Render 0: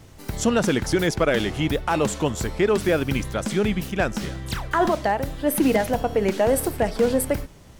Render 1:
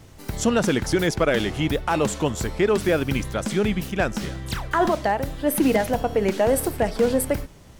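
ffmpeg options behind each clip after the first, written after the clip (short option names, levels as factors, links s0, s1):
-af anull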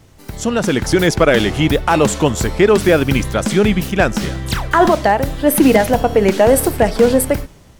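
-af "dynaudnorm=f=210:g=7:m=3.76"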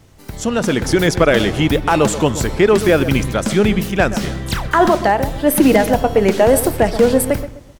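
-filter_complex "[0:a]asplit=2[s0][s1];[s1]adelay=128,lowpass=f=1400:p=1,volume=0.251,asplit=2[s2][s3];[s3]adelay=128,lowpass=f=1400:p=1,volume=0.36,asplit=2[s4][s5];[s5]adelay=128,lowpass=f=1400:p=1,volume=0.36,asplit=2[s6][s7];[s7]adelay=128,lowpass=f=1400:p=1,volume=0.36[s8];[s0][s2][s4][s6][s8]amix=inputs=5:normalize=0,volume=0.891"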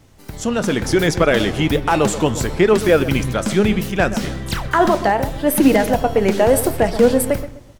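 -af "flanger=delay=3.2:depth=7.5:regen=80:speed=0.7:shape=triangular,volume=1.33"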